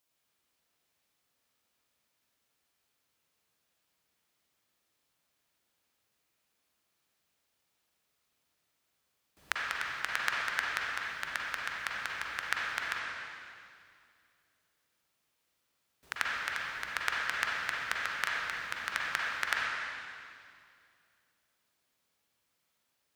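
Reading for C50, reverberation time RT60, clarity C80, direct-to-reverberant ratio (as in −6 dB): −2.5 dB, 2.3 s, −1.0 dB, −4.0 dB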